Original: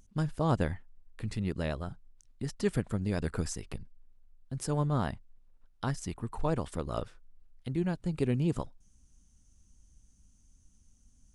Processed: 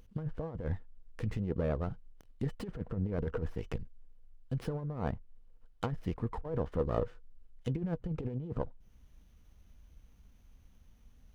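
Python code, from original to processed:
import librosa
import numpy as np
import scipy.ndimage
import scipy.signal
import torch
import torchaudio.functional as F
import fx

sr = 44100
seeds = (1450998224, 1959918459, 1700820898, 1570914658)

y = fx.env_lowpass_down(x, sr, base_hz=1400.0, full_db=-29.5)
y = fx.low_shelf(y, sr, hz=150.0, db=3.5)
y = fx.over_compress(y, sr, threshold_db=-31.0, ratio=-0.5)
y = fx.small_body(y, sr, hz=(480.0, 3000.0), ring_ms=70, db=11)
y = fx.running_max(y, sr, window=5)
y = y * 10.0 ** (-2.0 / 20.0)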